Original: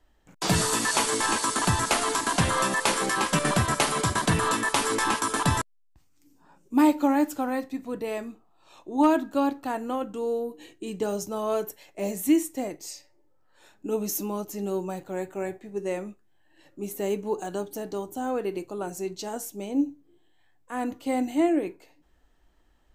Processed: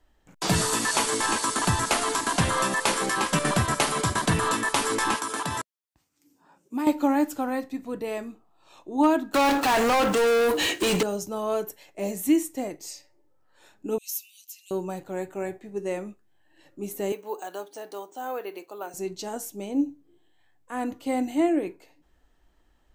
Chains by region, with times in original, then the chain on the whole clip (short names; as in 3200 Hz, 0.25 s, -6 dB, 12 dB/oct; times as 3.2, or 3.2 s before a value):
5.17–6.87 HPF 220 Hz 6 dB/oct + compressor 3:1, threshold -26 dBFS
9.34–11.03 block floating point 7-bit + tilt +1.5 dB/oct + overdrive pedal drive 40 dB, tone 4200 Hz, clips at -14.5 dBFS
13.98–14.71 steep high-pass 2500 Hz 48 dB/oct + dynamic EQ 7000 Hz, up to -4 dB, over -47 dBFS, Q 1.8
17.12–18.94 HPF 540 Hz + careless resampling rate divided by 3×, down filtered, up hold
whole clip: dry